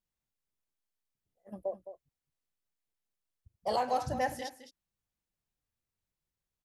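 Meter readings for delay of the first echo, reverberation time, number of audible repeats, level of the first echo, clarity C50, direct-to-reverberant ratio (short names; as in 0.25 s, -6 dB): 0.213 s, none, 1, -11.5 dB, none, none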